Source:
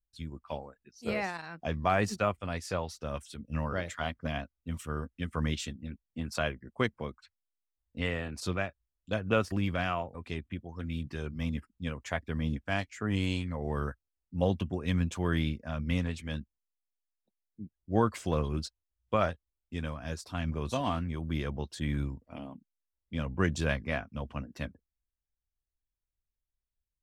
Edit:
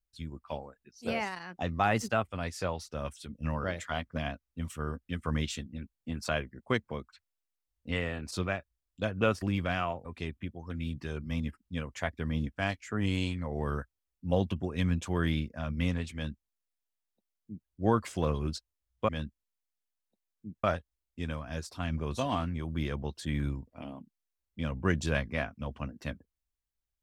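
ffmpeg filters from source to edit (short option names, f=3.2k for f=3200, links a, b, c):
-filter_complex "[0:a]asplit=5[a][b][c][d][e];[a]atrim=end=1.074[f];[b]atrim=start=1.07:end=2.34,asetpts=PTS-STARTPTS,asetrate=47628,aresample=44100,atrim=end_sample=51858,asetpts=PTS-STARTPTS[g];[c]atrim=start=2.336:end=19.182[h];[d]atrim=start=16.228:end=17.782[i];[e]atrim=start=19.178[j];[f][g]acrossfade=d=0.004:c1=hsin:c2=hsin[k];[k][h]acrossfade=d=0.004:c1=hsin:c2=hsin[l];[l][i]acrossfade=d=0.004:c1=hsin:c2=hsin[m];[m][j]acrossfade=d=0.004:c1=hsin:c2=hsin"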